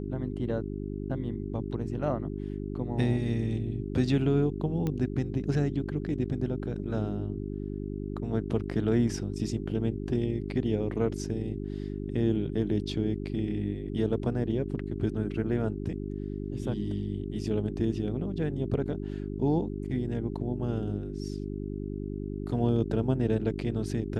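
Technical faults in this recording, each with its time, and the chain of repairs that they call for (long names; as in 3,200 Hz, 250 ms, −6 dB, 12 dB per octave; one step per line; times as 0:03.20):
mains hum 50 Hz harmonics 8 −35 dBFS
0:04.87: click −19 dBFS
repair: click removal
hum removal 50 Hz, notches 8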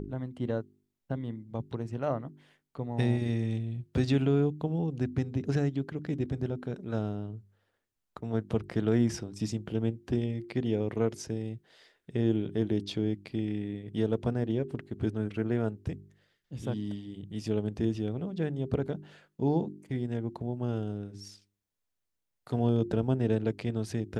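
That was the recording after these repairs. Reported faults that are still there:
none of them is left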